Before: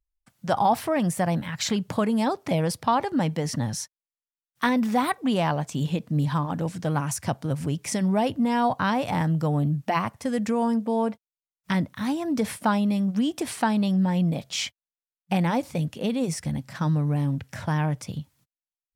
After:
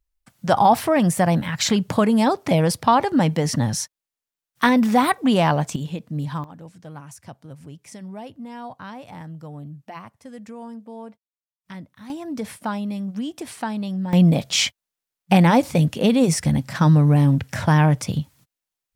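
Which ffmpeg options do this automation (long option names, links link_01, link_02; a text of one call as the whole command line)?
ffmpeg -i in.wav -af "asetnsamples=nb_out_samples=441:pad=0,asendcmd='5.76 volume volume -3dB;6.44 volume volume -13dB;12.1 volume volume -4dB;14.13 volume volume 9dB',volume=6dB" out.wav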